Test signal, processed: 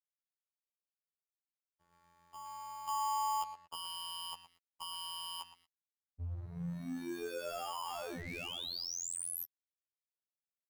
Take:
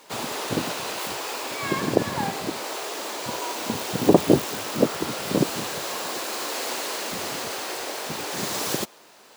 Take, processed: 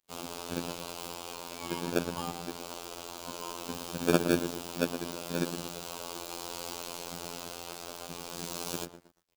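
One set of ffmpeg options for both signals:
ffmpeg -i in.wav -filter_complex "[0:a]acrossover=split=260|2300[link_01][link_02][link_03];[link_02]acrusher=samples=22:mix=1:aa=0.000001[link_04];[link_01][link_04][link_03]amix=inputs=3:normalize=0,asplit=2[link_05][link_06];[link_06]adelay=116,lowpass=frequency=1300:poles=1,volume=-8dB,asplit=2[link_07][link_08];[link_08]adelay=116,lowpass=frequency=1300:poles=1,volume=0.46,asplit=2[link_09][link_10];[link_10]adelay=116,lowpass=frequency=1300:poles=1,volume=0.46,asplit=2[link_11][link_12];[link_12]adelay=116,lowpass=frequency=1300:poles=1,volume=0.46,asplit=2[link_13][link_14];[link_14]adelay=116,lowpass=frequency=1300:poles=1,volume=0.46[link_15];[link_05][link_07][link_09][link_11][link_13][link_15]amix=inputs=6:normalize=0,aeval=exprs='val(0)+0.00112*(sin(2*PI*60*n/s)+sin(2*PI*2*60*n/s)/2+sin(2*PI*3*60*n/s)/3+sin(2*PI*4*60*n/s)/4+sin(2*PI*5*60*n/s)/5)':channel_layout=same,aeval=exprs='sgn(val(0))*max(abs(val(0))-0.00668,0)':channel_layout=same,afftfilt=real='hypot(re,im)*cos(PI*b)':imag='0':win_size=2048:overlap=0.75,volume=-5.5dB" out.wav

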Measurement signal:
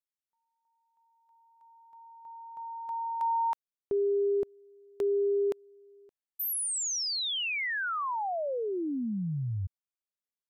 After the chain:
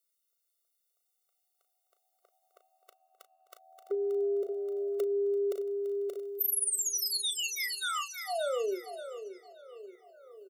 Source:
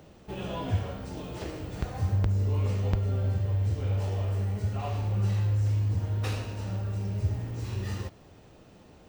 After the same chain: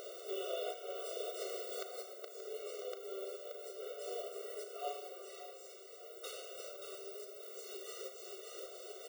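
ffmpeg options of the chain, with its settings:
ffmpeg -i in.wav -filter_complex "[0:a]lowshelf=frequency=300:gain=9.5,asplit=2[link_01][link_02];[link_02]aecho=0:1:578|1156|1734|2312:0.376|0.132|0.046|0.0161[link_03];[link_01][link_03]amix=inputs=2:normalize=0,aexciter=amount=3.3:drive=1.9:freq=3300,asplit=2[link_04][link_05];[link_05]adelay=36,volume=-9.5dB[link_06];[link_04][link_06]amix=inputs=2:normalize=0,asplit=2[link_07][link_08];[link_08]asplit=4[link_09][link_10][link_11][link_12];[link_09]adelay=338,afreqshift=-81,volume=-18dB[link_13];[link_10]adelay=676,afreqshift=-162,volume=-23.7dB[link_14];[link_11]adelay=1014,afreqshift=-243,volume=-29.4dB[link_15];[link_12]adelay=1352,afreqshift=-324,volume=-35dB[link_16];[link_13][link_14][link_15][link_16]amix=inputs=4:normalize=0[link_17];[link_07][link_17]amix=inputs=2:normalize=0,acompressor=threshold=-36dB:ratio=3:attack=2:release=559:knee=1:detection=peak,afftfilt=real='re*eq(mod(floor(b*sr/1024/380),2),1)':imag='im*eq(mod(floor(b*sr/1024/380),2),1)':win_size=1024:overlap=0.75,volume=6.5dB" out.wav

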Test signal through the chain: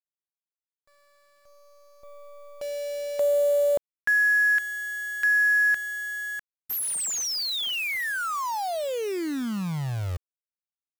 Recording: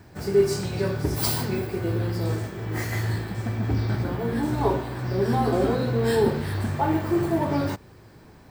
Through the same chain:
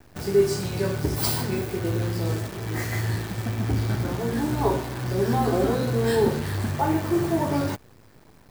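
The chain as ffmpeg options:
ffmpeg -i in.wav -af "acrusher=bits=7:dc=4:mix=0:aa=0.000001" out.wav

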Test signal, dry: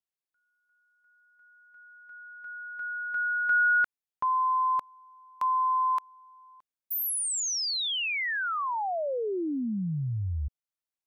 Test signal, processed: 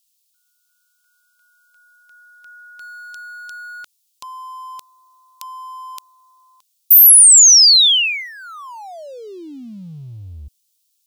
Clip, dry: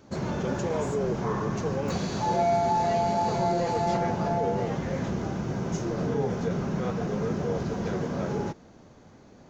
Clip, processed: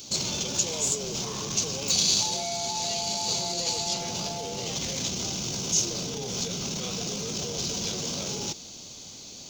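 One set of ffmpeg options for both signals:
ffmpeg -i in.wav -af "acompressor=threshold=-32dB:ratio=5:attack=0.14:release=21:knee=1:detection=rms,aexciter=amount=14.5:drive=6.1:freq=2700" out.wav

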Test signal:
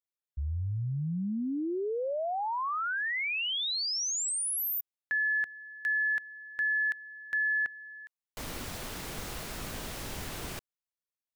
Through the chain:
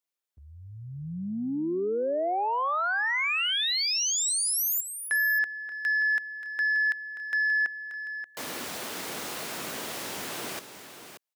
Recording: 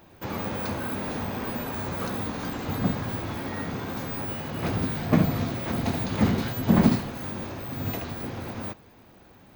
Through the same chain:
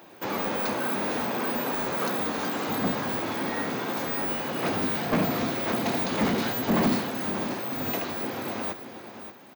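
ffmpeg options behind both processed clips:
ffmpeg -i in.wav -af "highpass=260,asoftclip=type=tanh:threshold=-23.5dB,aecho=1:1:279|581:0.119|0.299,volume=5dB" out.wav

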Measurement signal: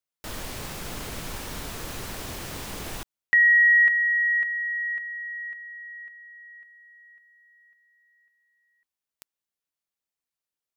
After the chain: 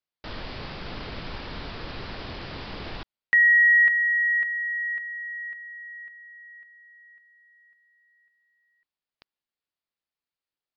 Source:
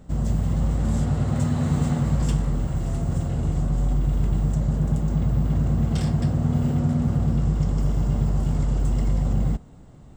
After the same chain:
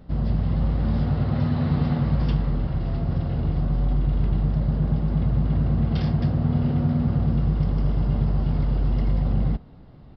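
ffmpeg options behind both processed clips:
ffmpeg -i in.wav -af "aresample=11025,aresample=44100" out.wav

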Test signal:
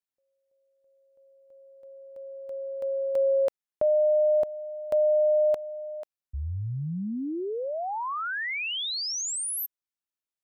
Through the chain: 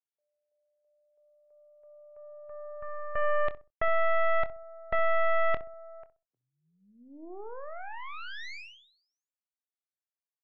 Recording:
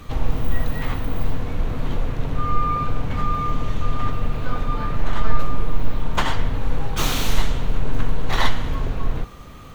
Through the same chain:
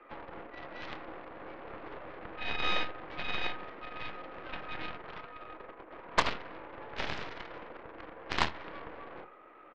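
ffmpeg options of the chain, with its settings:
ffmpeg -i in.wav -filter_complex "[0:a]acontrast=84,highpass=frequency=300:width_type=q:width=0.5412,highpass=frequency=300:width_type=q:width=1.307,lowpass=frequency=2300:width_type=q:width=0.5176,lowpass=frequency=2300:width_type=q:width=0.7071,lowpass=frequency=2300:width_type=q:width=1.932,afreqshift=50,aeval=exprs='0.708*(cos(1*acos(clip(val(0)/0.708,-1,1)))-cos(1*PI/2))+0.1*(cos(6*acos(clip(val(0)/0.708,-1,1)))-cos(6*PI/2))+0.141*(cos(7*acos(clip(val(0)/0.708,-1,1)))-cos(7*PI/2))':channel_layout=same,asplit=2[link_01][link_02];[link_02]adelay=25,volume=-13.5dB[link_03];[link_01][link_03]amix=inputs=2:normalize=0,asplit=2[link_04][link_05];[link_05]adelay=64,lowpass=frequency=1000:poles=1,volume=-13dB,asplit=2[link_06][link_07];[link_07]adelay=64,lowpass=frequency=1000:poles=1,volume=0.28,asplit=2[link_08][link_09];[link_09]adelay=64,lowpass=frequency=1000:poles=1,volume=0.28[link_10];[link_06][link_08][link_10]amix=inputs=3:normalize=0[link_11];[link_04][link_11]amix=inputs=2:normalize=0,volume=-8dB" out.wav

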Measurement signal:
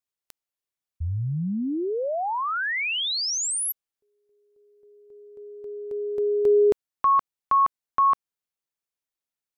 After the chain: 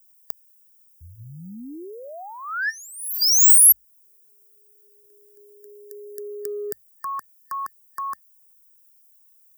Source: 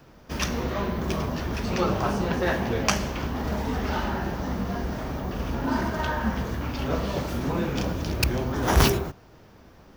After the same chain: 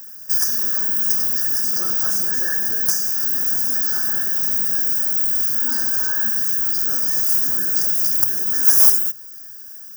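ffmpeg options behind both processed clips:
ffmpeg -i in.wav -filter_complex "[0:a]equalizer=frequency=500:width_type=o:width=1:gain=-6,equalizer=frequency=1000:width_type=o:width=1:gain=-12,equalizer=frequency=2000:width_type=o:width=1:gain=12,equalizer=frequency=4000:width_type=o:width=1:gain=6,equalizer=frequency=8000:width_type=o:width=1:gain=11,asplit=2[link_01][link_02];[link_02]acompressor=threshold=-25dB:ratio=16:attack=97:release=380:knee=6:detection=rms,volume=2dB[link_03];[link_01][link_03]amix=inputs=2:normalize=0,aemphasis=mode=production:type=riaa,acrossover=split=130|4900[link_04][link_05][link_06];[link_06]acrusher=bits=4:mode=log:mix=0:aa=0.000001[link_07];[link_04][link_05][link_07]amix=inputs=3:normalize=0,bandreject=frequency=50:width_type=h:width=6,bandreject=frequency=100:width_type=h:width=6,acontrast=77,aexciter=amount=3.3:drive=2.5:freq=10000,afftfilt=real='re*(1-between(b*sr/4096,1800,4700))':imag='im*(1-between(b*sr/4096,1800,4700))':win_size=4096:overlap=0.75,volume=-15dB" out.wav

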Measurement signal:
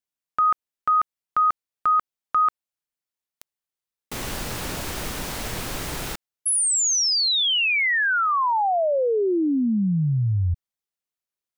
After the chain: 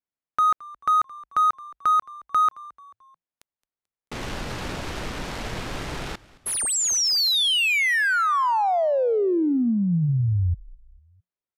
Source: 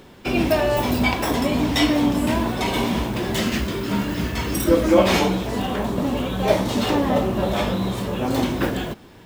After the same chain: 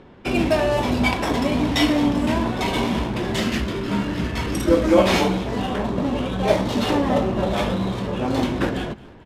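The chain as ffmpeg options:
ffmpeg -i in.wav -filter_complex "[0:a]adynamicsmooth=sensitivity=7.5:basefreq=2300,asplit=4[link_01][link_02][link_03][link_04];[link_02]adelay=219,afreqshift=-60,volume=-21.5dB[link_05];[link_03]adelay=438,afreqshift=-120,volume=-28.2dB[link_06];[link_04]adelay=657,afreqshift=-180,volume=-35dB[link_07];[link_01][link_05][link_06][link_07]amix=inputs=4:normalize=0,aresample=32000,aresample=44100" out.wav

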